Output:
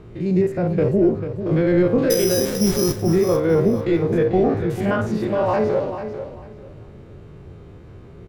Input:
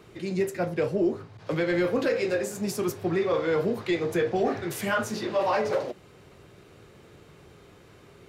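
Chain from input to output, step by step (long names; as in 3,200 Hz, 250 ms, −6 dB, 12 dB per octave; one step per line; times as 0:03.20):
spectrum averaged block by block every 50 ms
0:02.10–0:02.96: bad sample-rate conversion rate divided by 8×, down none, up zero stuff
spectral tilt −3.5 dB per octave
repeating echo 443 ms, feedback 22%, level −10 dB
level +4 dB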